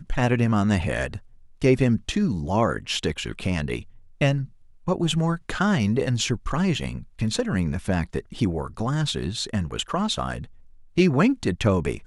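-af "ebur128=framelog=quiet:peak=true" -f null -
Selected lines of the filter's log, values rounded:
Integrated loudness:
  I:         -24.5 LUFS
  Threshold: -34.7 LUFS
Loudness range:
  LRA:         2.5 LU
  Threshold: -45.3 LUFS
  LRA low:   -26.6 LUFS
  LRA high:  -24.1 LUFS
True peak:
  Peak:       -5.6 dBFS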